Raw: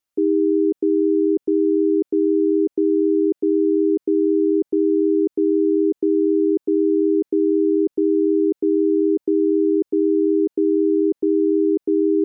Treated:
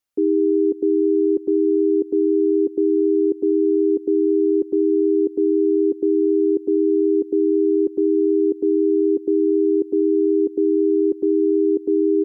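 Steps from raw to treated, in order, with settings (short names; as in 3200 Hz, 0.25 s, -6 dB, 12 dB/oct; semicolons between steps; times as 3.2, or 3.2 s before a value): echo 0.195 s -18.5 dB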